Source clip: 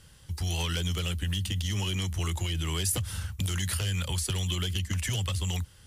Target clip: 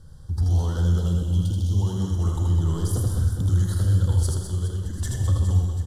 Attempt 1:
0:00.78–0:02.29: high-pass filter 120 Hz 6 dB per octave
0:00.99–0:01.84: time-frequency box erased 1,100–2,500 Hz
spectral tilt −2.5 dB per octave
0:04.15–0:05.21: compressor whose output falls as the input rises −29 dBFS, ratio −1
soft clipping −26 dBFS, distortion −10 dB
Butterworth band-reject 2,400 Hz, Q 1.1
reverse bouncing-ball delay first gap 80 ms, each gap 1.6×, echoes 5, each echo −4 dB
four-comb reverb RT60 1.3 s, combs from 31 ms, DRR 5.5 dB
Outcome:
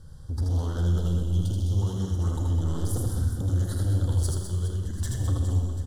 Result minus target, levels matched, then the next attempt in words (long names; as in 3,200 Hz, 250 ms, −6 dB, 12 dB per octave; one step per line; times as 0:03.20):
soft clipping: distortion +10 dB
0:00.78–0:02.29: high-pass filter 120 Hz 6 dB per octave
0:00.99–0:01.84: time-frequency box erased 1,100–2,500 Hz
spectral tilt −2.5 dB per octave
0:04.15–0:05.21: compressor whose output falls as the input rises −29 dBFS, ratio −1
soft clipping −17.5 dBFS, distortion −20 dB
Butterworth band-reject 2,400 Hz, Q 1.1
reverse bouncing-ball delay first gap 80 ms, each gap 1.6×, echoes 5, each echo −4 dB
four-comb reverb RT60 1.3 s, combs from 31 ms, DRR 5.5 dB